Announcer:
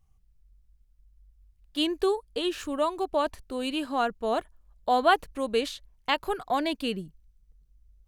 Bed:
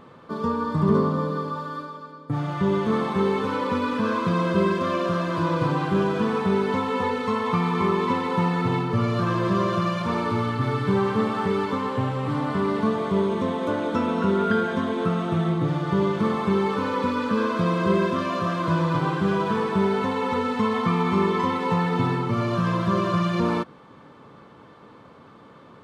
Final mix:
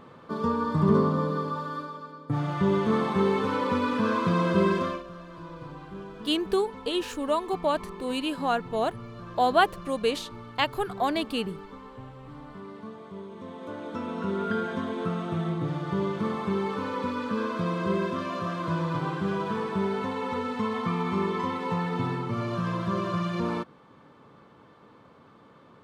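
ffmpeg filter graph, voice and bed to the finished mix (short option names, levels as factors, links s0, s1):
-filter_complex "[0:a]adelay=4500,volume=1.06[s0];[1:a]volume=3.55,afade=t=out:st=4.78:d=0.25:silence=0.141254,afade=t=in:st=13.31:d=1.35:silence=0.237137[s1];[s0][s1]amix=inputs=2:normalize=0"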